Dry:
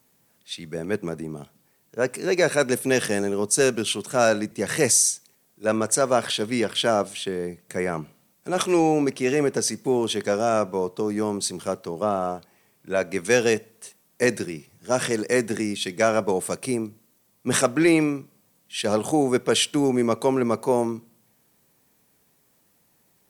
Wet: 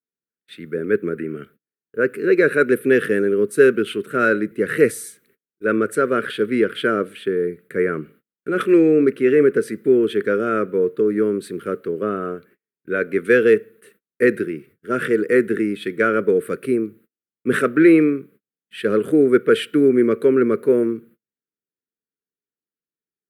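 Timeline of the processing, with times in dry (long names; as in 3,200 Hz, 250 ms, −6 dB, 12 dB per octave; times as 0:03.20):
0:01.18–0:01.45: gain on a spectral selection 1,300–3,200 Hz +10 dB
whole clip: noise gate −50 dBFS, range −35 dB; drawn EQ curve 110 Hz 0 dB, 450 Hz +12 dB, 830 Hz −22 dB, 1,400 Hz +12 dB, 3,900 Hz −7 dB, 5,900 Hz −22 dB, 12,000 Hz −2 dB; level −2.5 dB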